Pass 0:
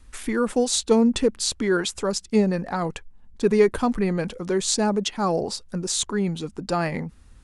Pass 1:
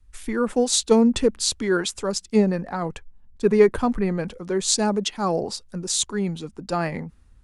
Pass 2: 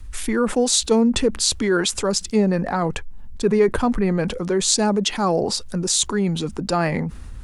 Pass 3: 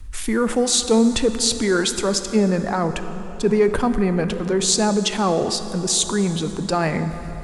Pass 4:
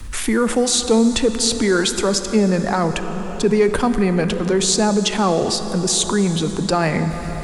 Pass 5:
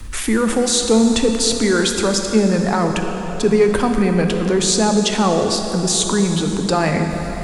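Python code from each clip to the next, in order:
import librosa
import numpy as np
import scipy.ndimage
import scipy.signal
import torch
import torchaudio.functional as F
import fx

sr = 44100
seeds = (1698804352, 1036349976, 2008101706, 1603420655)

y1 = fx.band_widen(x, sr, depth_pct=40)
y2 = fx.env_flatten(y1, sr, amount_pct=50)
y2 = F.gain(torch.from_numpy(y2), -2.5).numpy()
y3 = fx.rev_plate(y2, sr, seeds[0], rt60_s=4.3, hf_ratio=0.55, predelay_ms=0, drr_db=9.0)
y4 = fx.band_squash(y3, sr, depth_pct=40)
y4 = F.gain(torch.from_numpy(y4), 2.0).numpy()
y5 = fx.rev_plate(y4, sr, seeds[1], rt60_s=2.8, hf_ratio=0.8, predelay_ms=0, drr_db=6.0)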